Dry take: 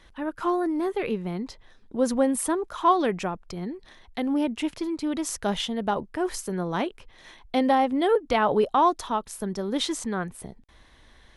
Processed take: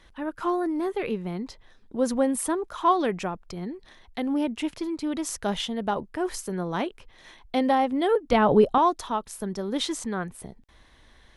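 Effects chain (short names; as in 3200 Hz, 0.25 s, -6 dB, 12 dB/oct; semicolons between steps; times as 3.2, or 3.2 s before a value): 8.32–8.78 low shelf 380 Hz +11 dB; gain -1 dB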